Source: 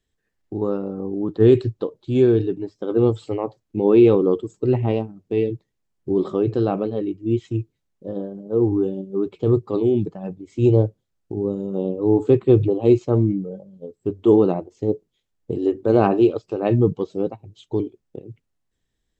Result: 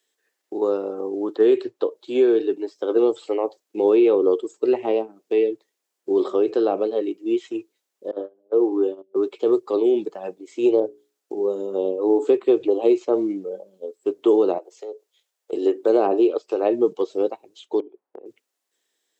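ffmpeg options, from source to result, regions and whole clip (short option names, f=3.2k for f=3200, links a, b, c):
-filter_complex "[0:a]asettb=1/sr,asplit=3[a][b][c];[a]atrim=end=8.114[d];[b]atrim=start=8.11:end=9.16,asetpts=PTS-STARTPTS,afade=t=in:d=0.004:c=qsin,afade=t=out:st=1.046:d=0.004:c=qsin,highpass=f=240:w=0.5412,highpass=f=240:w=1.3066,agate=range=-22dB:threshold=-30dB:ratio=16:release=100:detection=peak,highshelf=f=3.6k:g=-9[e];[c]atrim=start=9.156[f];[d][e]acrossfade=d=0.004:c1=hsin:c2=qsin[g];[g][f]acrossfade=d=0.004:c1=qsin:c2=hsin,asettb=1/sr,asplit=3[h][i][j];[h]atrim=end=10.804[k];[i]atrim=start=10.8:end=12.24,asetpts=PTS-STARTPTS,afade=t=in:d=0.004:c=qsin,afade=t=out:st=1.436:d=0.004:c=qsin,bandreject=f=60:t=h:w=6,bandreject=f=120:t=h:w=6,bandreject=f=180:t=h:w=6,bandreject=f=240:t=h:w=6,bandreject=f=300:t=h:w=6,bandreject=f=360:t=h:w=6,bandreject=f=420:t=h:w=6,adynamicequalizer=threshold=0.0126:dfrequency=1700:dqfactor=0.7:tfrequency=1700:tqfactor=0.7:attack=5:release=100:ratio=0.375:range=2.5:mode=cutabove:tftype=highshelf[l];[j]atrim=start=12.236[m];[k][l]acrossfade=d=0.004:c1=hsin:c2=qsin[n];[n][m]acrossfade=d=0.004:c1=qsin:c2=hsin,asettb=1/sr,asplit=3[o][p][q];[o]atrim=end=14.584[r];[p]atrim=start=14.58:end=15.53,asetpts=PTS-STARTPTS,afade=t=in:d=0.004:c=qsin,afade=t=out:st=0.946:d=0.004:c=qsin,highpass=f=440:w=0.5412,highpass=f=440:w=1.3066,acompressor=threshold=-36dB:ratio=3:attack=3.2:release=140:knee=1:detection=peak[s];[q]atrim=start=15.526[t];[r][s]acrossfade=d=0.004:c1=hsin:c2=qsin[u];[u][t]acrossfade=d=0.004:c1=qsin:c2=hsin,asettb=1/sr,asplit=3[v][w][x];[v]atrim=end=17.804[y];[w]atrim=start=17.8:end=18.26,asetpts=PTS-STARTPTS,afade=t=in:d=0.004:c=qsin,afade=t=out:st=0.456:d=0.004:c=qsin,lowpass=1.2k,equalizer=f=900:w=2.1:g=6.5,acompressor=threshold=-35dB:ratio=8:attack=3.2:release=140:knee=1:detection=peak[z];[x]atrim=start=18.256[aa];[y][z]acrossfade=d=0.004:c1=hsin:c2=qsin[ab];[ab][aa]acrossfade=d=0.004:c1=qsin:c2=hsin,highpass=f=360:w=0.5412,highpass=f=360:w=1.3066,highshelf=f=3.7k:g=7,acrossover=split=770|3000[ac][ad][ae];[ac]acompressor=threshold=-18dB:ratio=4[af];[ad]acompressor=threshold=-40dB:ratio=4[ag];[ae]acompressor=threshold=-55dB:ratio=4[ah];[af][ag][ah]amix=inputs=3:normalize=0,volume=4.5dB"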